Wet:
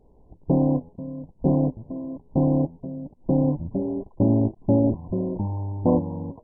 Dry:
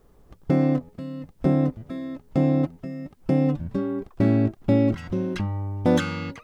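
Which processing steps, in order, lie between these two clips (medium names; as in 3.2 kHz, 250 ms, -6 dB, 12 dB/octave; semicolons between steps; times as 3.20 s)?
MP2 8 kbps 22.05 kHz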